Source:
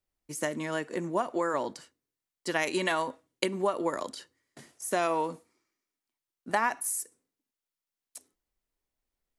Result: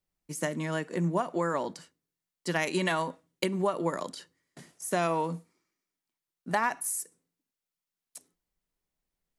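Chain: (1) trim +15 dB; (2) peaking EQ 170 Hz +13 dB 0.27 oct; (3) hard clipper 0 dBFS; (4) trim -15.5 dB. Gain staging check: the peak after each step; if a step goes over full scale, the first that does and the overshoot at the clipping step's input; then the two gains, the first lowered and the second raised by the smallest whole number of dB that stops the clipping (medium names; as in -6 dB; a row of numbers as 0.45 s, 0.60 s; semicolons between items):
+8.0 dBFS, +8.0 dBFS, 0.0 dBFS, -15.5 dBFS; step 1, 8.0 dB; step 1 +7 dB, step 4 -7.5 dB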